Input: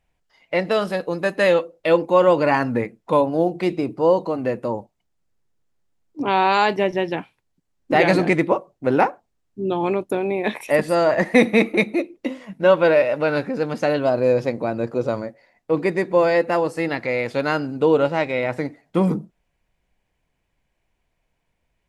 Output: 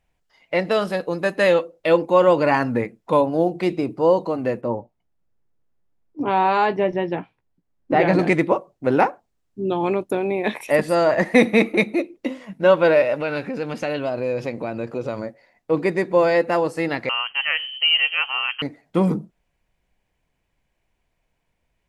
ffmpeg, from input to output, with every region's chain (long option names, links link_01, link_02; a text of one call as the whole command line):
ffmpeg -i in.wav -filter_complex "[0:a]asettb=1/sr,asplit=3[link_01][link_02][link_03];[link_01]atrim=end=4.614[link_04];[link_02]atrim=start=4.61:end=8.19,asetpts=PTS-STARTPTS,afade=type=in:duration=0.004:curve=qsin,afade=type=out:start_time=3.576:duration=0.004:curve=qsin,lowpass=frequency=1400:poles=1,asplit=2[link_05][link_06];[link_06]adelay=17,volume=-11dB[link_07];[link_05][link_07]amix=inputs=2:normalize=0,atrim=end_sample=157878[link_08];[link_03]atrim=start=8.186[link_09];[link_04][link_08]acrossfade=duration=0.004:curve1=hsin:curve2=qsin[link_10];[link_10][link_09]acrossfade=duration=0.004:curve1=qsin:curve2=hsin,asettb=1/sr,asplit=3[link_11][link_12][link_13];[link_11]atrim=end=13.184[link_14];[link_12]atrim=start=13.18:end=15.19,asetpts=PTS-STARTPTS,afade=type=in:duration=0.004:curve=qsin,afade=type=out:start_time=2.006:duration=0.004:curve=qsin,acompressor=threshold=-25dB:ratio=2:attack=3.2:release=140:knee=1:detection=peak,equalizer=frequency=2600:width_type=o:width=0.69:gain=6.5[link_15];[link_13]atrim=start=15.186[link_16];[link_14][link_15]acrossfade=duration=0.004:curve1=hsin:curve2=qsin[link_17];[link_17][link_16]acrossfade=duration=0.004:curve1=qsin:curve2=hsin,asettb=1/sr,asplit=3[link_18][link_19][link_20];[link_18]atrim=end=17.094[link_21];[link_19]atrim=start=17.09:end=18.62,asetpts=PTS-STARTPTS,afade=type=in:duration=0.004:curve=qsin,afade=type=out:start_time=1.526:duration=0.004:curve=qsin,lowshelf=frequency=210:gain=-12,adynamicsmooth=sensitivity=4:basefreq=1500,lowpass=frequency=2800:width_type=q:width=0.5098,lowpass=frequency=2800:width_type=q:width=0.6013,lowpass=frequency=2800:width_type=q:width=0.9,lowpass=frequency=2800:width_type=q:width=2.563,afreqshift=-3300[link_22];[link_20]atrim=start=18.616[link_23];[link_21][link_22]acrossfade=duration=0.004:curve1=hsin:curve2=qsin[link_24];[link_24][link_23]acrossfade=duration=0.004:curve1=qsin:curve2=hsin" out.wav